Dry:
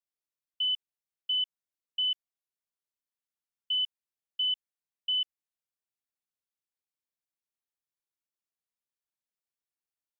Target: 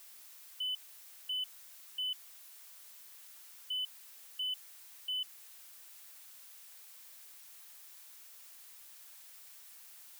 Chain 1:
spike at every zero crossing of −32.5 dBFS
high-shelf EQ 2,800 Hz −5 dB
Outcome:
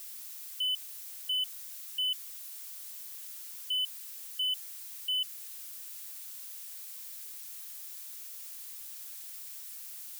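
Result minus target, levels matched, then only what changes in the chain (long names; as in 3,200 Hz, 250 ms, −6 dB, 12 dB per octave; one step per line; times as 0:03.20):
2,000 Hz band −2.5 dB
change: high-shelf EQ 2,800 Hz −15.5 dB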